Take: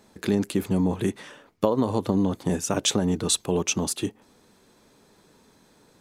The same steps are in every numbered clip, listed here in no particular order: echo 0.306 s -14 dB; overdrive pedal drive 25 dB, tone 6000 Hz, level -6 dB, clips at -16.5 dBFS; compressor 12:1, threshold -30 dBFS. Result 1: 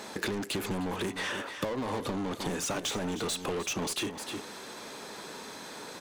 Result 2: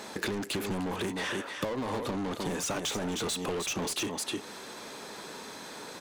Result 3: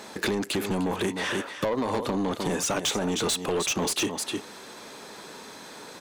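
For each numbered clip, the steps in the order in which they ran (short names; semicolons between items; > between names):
overdrive pedal > echo > compressor; echo > overdrive pedal > compressor; echo > compressor > overdrive pedal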